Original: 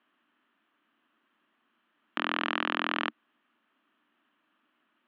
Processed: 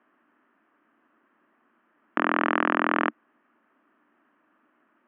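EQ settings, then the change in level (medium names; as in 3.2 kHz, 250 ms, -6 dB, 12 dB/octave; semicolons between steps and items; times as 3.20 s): low-pass 2.1 kHz 24 dB/octave; peaking EQ 460 Hz +5 dB 1.7 oct; +6.0 dB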